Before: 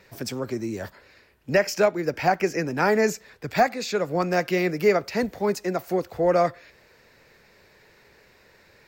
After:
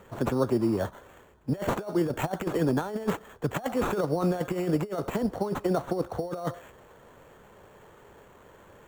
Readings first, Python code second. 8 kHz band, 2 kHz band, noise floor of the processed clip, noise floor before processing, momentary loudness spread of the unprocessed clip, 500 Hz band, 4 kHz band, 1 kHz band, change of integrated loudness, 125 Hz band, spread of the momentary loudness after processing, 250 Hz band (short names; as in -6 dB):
-9.0 dB, -11.5 dB, -54 dBFS, -57 dBFS, 9 LU, -6.5 dB, -9.0 dB, -8.0 dB, -5.0 dB, +1.5 dB, 7 LU, 0.0 dB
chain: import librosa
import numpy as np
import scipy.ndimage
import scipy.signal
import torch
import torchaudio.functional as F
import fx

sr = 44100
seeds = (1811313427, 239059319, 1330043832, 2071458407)

y = fx.sample_hold(x, sr, seeds[0], rate_hz=5000.0, jitter_pct=0)
y = fx.over_compress(y, sr, threshold_db=-26.0, ratio=-0.5)
y = fx.high_shelf_res(y, sr, hz=1600.0, db=-8.5, q=1.5)